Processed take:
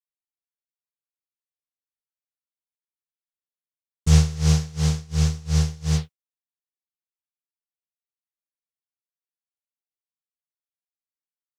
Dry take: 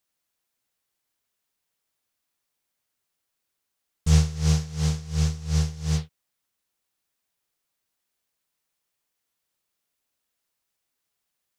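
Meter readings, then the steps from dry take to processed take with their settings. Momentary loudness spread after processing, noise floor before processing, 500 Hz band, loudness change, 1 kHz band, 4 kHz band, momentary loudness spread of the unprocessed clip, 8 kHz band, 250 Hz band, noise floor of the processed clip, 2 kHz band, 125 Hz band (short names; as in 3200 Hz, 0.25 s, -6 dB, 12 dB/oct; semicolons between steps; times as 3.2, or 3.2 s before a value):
7 LU, -81 dBFS, +3.0 dB, +3.0 dB, +3.0 dB, +3.0 dB, 7 LU, +3.0 dB, +3.0 dB, under -85 dBFS, +3.0 dB, +3.0 dB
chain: expander -28 dBFS; gain +3 dB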